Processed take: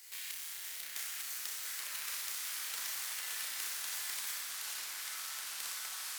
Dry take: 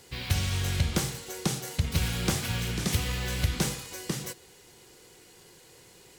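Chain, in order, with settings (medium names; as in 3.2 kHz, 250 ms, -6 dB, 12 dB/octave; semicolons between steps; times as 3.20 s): square wave that keeps the level; differentiator; flutter echo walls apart 5.4 m, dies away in 0.74 s; compression 5:1, threshold -37 dBFS, peak gain reduction 13 dB; peaking EQ 1.9 kHz +7.5 dB 0.69 oct; ever faster or slower copies 796 ms, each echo -5 st, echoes 3; high-pass 740 Hz 6 dB/octave; repeats whose band climbs or falls 698 ms, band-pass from 1.6 kHz, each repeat 1.4 oct, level -2 dB; trim -2 dB; Opus 256 kbps 48 kHz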